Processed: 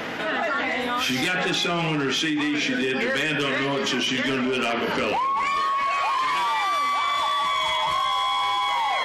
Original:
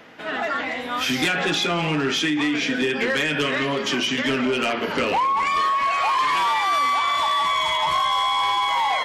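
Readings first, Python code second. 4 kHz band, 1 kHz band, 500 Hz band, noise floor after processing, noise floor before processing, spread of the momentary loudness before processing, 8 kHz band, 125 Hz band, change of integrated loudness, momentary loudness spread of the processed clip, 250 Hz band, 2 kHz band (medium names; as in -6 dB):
-1.5 dB, -2.5 dB, -1.0 dB, -26 dBFS, -28 dBFS, 4 LU, -1.5 dB, -1.5 dB, -2.0 dB, 1 LU, -1.5 dB, -1.5 dB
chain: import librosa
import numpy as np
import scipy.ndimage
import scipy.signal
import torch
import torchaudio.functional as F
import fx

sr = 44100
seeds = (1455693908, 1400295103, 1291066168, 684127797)

y = fx.env_flatten(x, sr, amount_pct=70)
y = y * librosa.db_to_amplitude(-4.0)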